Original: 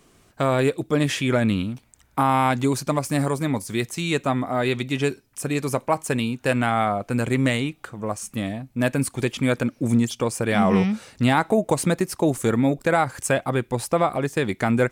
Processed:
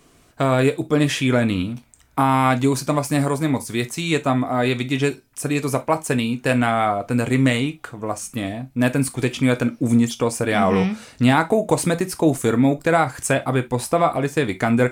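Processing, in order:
reverb whose tail is shaped and stops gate 90 ms falling, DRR 8.5 dB
level +2 dB

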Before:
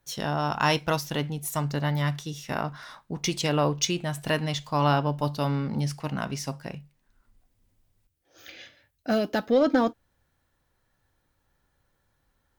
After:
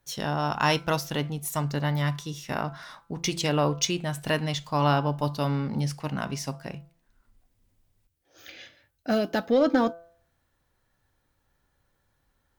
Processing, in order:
hum removal 168.5 Hz, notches 9

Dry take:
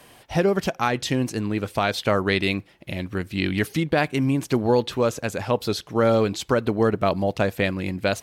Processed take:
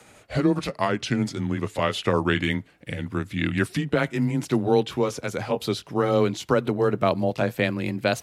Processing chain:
pitch glide at a constant tempo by −4.5 semitones ending unshifted
frequency shifter +17 Hz

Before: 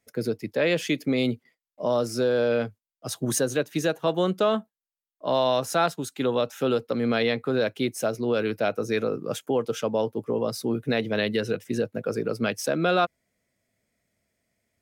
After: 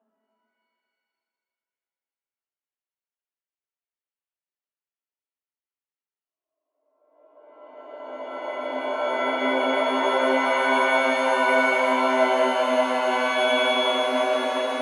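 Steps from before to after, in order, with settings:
extreme stretch with random phases 16×, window 0.25 s, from 0:04.70
Chebyshev band-pass filter 250–3,000 Hz, order 5
reverb with rising layers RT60 2.4 s, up +7 semitones, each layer −2 dB, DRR 4.5 dB
level −1.5 dB

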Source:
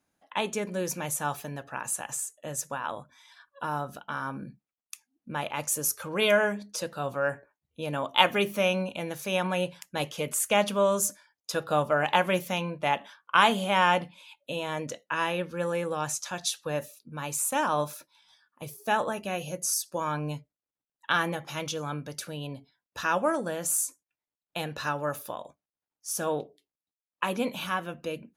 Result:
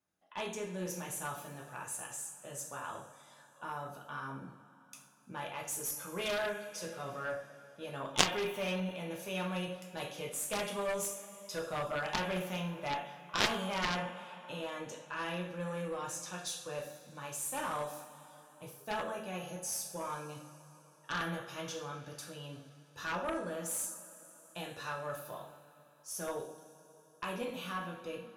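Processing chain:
coupled-rooms reverb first 0.51 s, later 3.8 s, from −19 dB, DRR −1.5 dB
harmonic generator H 3 −7 dB, 6 −25 dB, 8 −32 dB, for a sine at −3 dBFS
level −2.5 dB

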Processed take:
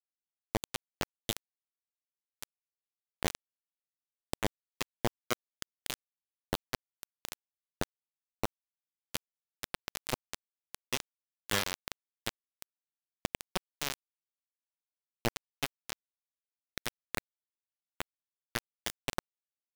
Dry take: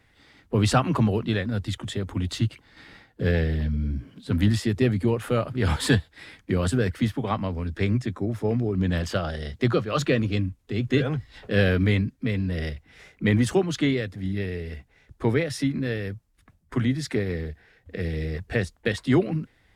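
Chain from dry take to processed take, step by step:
low-shelf EQ 480 Hz −6 dB
harmonic and percussive parts rebalanced percussive −18 dB
parametric band 3,200 Hz +9.5 dB 0.3 octaves
downward compressor 4 to 1, threshold −37 dBFS, peak gain reduction 14 dB
bit reduction 5 bits
level +7 dB

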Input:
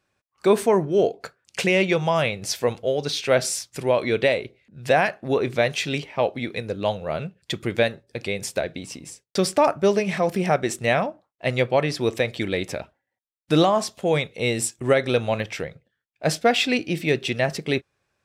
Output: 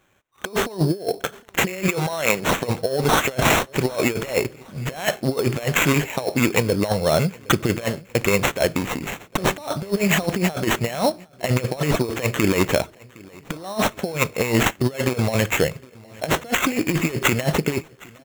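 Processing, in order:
0:01.88–0:02.56: high-pass filter 230 Hz 12 dB per octave
compressor whose output falls as the input rises −26 dBFS, ratio −0.5
repeating echo 763 ms, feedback 44%, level −24 dB
sample-rate reduction 4,800 Hz, jitter 0%
level +6 dB

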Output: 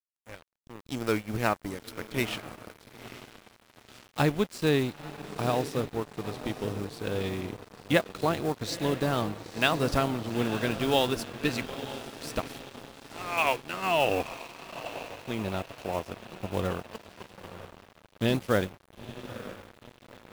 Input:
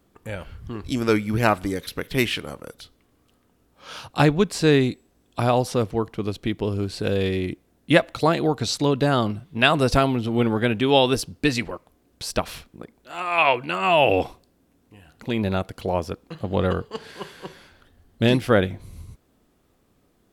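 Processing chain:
one scale factor per block 5 bits
on a send: feedback delay with all-pass diffusion 922 ms, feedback 62%, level −9.5 dB
on the sum: dead-zone distortion −31.5 dBFS
level −6.5 dB

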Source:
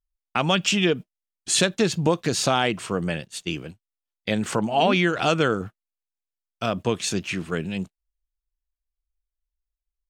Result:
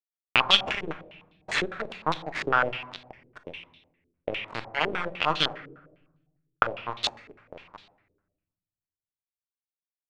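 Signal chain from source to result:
camcorder AGC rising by 12 dB per second
high-pass filter 49 Hz 12 dB per octave
spectral tilt +2.5 dB per octave
notch filter 370 Hz, Q 12
harmonic generator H 2 −31 dB, 4 −45 dB, 7 −20 dB, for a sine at 0 dBFS
centre clipping without the shift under −22 dBFS
rectangular room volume 460 cubic metres, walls mixed, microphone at 0.48 metres
low-pass on a step sequencer 9.9 Hz 410–3,700 Hz
level −1.5 dB

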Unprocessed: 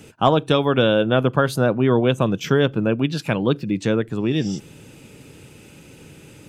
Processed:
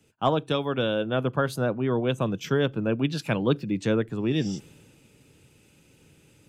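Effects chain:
speech leveller 0.5 s
multiband upward and downward expander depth 40%
level −6.5 dB

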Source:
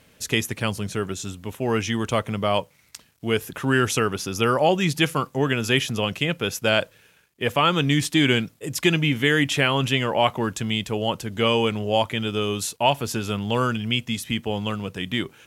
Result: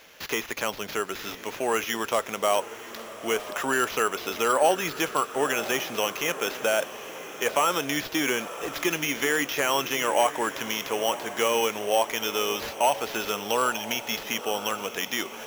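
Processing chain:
de-essing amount 85%
high-pass filter 530 Hz 12 dB per octave
in parallel at +1.5 dB: downward compressor, threshold −36 dBFS, peak gain reduction 17 dB
on the sum: decimation without filtering 5×
feedback delay with all-pass diffusion 994 ms, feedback 54%, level −13 dB

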